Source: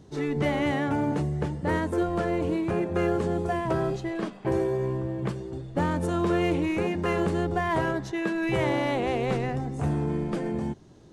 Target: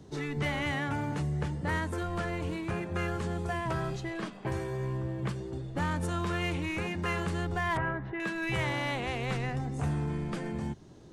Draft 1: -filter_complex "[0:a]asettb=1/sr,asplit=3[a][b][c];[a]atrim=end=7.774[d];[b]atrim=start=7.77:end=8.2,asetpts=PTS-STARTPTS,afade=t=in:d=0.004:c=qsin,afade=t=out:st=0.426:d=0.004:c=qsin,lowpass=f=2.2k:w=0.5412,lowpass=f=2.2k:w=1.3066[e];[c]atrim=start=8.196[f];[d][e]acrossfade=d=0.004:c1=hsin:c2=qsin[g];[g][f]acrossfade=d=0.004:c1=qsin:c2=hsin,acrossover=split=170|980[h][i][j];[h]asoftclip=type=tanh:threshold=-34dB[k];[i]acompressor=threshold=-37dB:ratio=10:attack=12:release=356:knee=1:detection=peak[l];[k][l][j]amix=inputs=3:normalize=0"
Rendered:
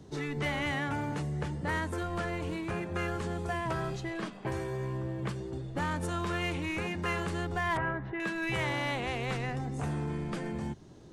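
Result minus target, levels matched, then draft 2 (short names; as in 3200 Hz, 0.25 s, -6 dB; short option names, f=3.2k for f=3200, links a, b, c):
soft clip: distortion +11 dB
-filter_complex "[0:a]asettb=1/sr,asplit=3[a][b][c];[a]atrim=end=7.774[d];[b]atrim=start=7.77:end=8.2,asetpts=PTS-STARTPTS,afade=t=in:d=0.004:c=qsin,afade=t=out:st=0.426:d=0.004:c=qsin,lowpass=f=2.2k:w=0.5412,lowpass=f=2.2k:w=1.3066[e];[c]atrim=start=8.196[f];[d][e]acrossfade=d=0.004:c1=hsin:c2=qsin[g];[g][f]acrossfade=d=0.004:c1=qsin:c2=hsin,acrossover=split=170|980[h][i][j];[h]asoftclip=type=tanh:threshold=-25dB[k];[i]acompressor=threshold=-37dB:ratio=10:attack=12:release=356:knee=1:detection=peak[l];[k][l][j]amix=inputs=3:normalize=0"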